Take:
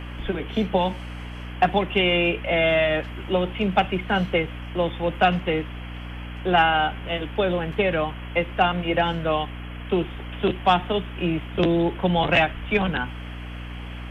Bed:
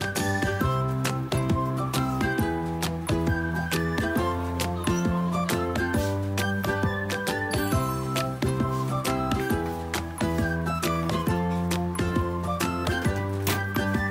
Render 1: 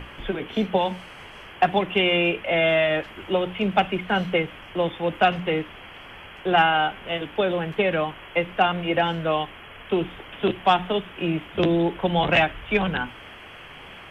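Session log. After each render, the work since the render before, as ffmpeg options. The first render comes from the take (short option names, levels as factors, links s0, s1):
-af "bandreject=f=60:t=h:w=6,bandreject=f=120:t=h:w=6,bandreject=f=180:t=h:w=6,bandreject=f=240:t=h:w=6,bandreject=f=300:t=h:w=6"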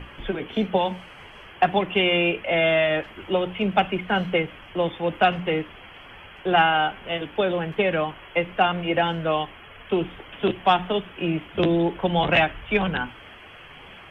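-af "afftdn=nr=6:nf=-43"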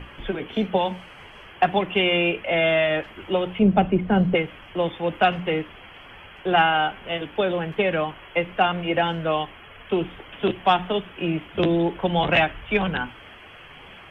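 -filter_complex "[0:a]asettb=1/sr,asplit=3[s0][s1][s2];[s0]atrim=end=3.594[s3];[s1]atrim=start=3.59:end=4.35,asetpts=PTS-STARTPTS,afade=t=in:d=0.004:c=qsin,afade=t=out:st=0.756:d=0.004:c=qsin,tiltshelf=f=750:g=9.5[s4];[s2]atrim=start=4.346[s5];[s3][s4]acrossfade=d=0.004:c1=hsin:c2=qsin[s6];[s6][s5]acrossfade=d=0.004:c1=qsin:c2=hsin"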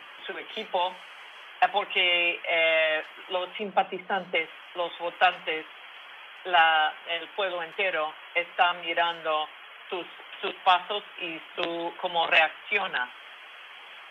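-af "highpass=760"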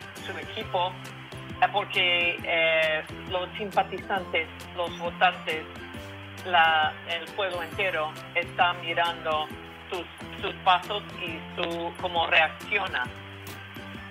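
-filter_complex "[1:a]volume=0.168[s0];[0:a][s0]amix=inputs=2:normalize=0"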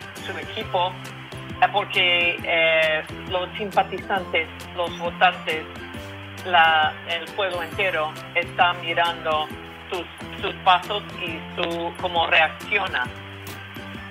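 -af "volume=1.68,alimiter=limit=0.708:level=0:latency=1"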